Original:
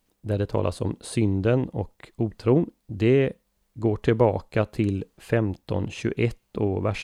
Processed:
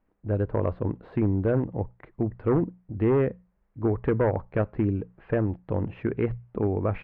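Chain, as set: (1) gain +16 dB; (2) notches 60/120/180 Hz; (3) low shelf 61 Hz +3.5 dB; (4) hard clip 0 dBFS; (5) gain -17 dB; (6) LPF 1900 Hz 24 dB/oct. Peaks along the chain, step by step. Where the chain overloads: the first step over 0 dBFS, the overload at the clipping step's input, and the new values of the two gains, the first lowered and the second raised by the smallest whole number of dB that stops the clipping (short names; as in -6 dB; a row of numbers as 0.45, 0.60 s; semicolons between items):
+9.0, +9.5, +9.5, 0.0, -17.0, -15.5 dBFS; step 1, 9.5 dB; step 1 +6 dB, step 5 -7 dB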